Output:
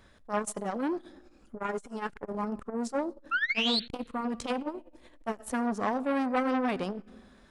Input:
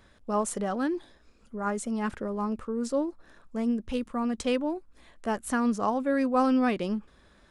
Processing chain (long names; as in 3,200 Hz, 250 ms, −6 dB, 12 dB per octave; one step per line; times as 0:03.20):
0:01.56–0:02.31: comb filter 7 ms, depth 52%
0:03.31–0:03.80: sound drawn into the spectrogram rise 1,300–4,500 Hz −24 dBFS
convolution reverb RT60 1.4 s, pre-delay 30 ms, DRR 19.5 dB
saturating transformer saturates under 1,100 Hz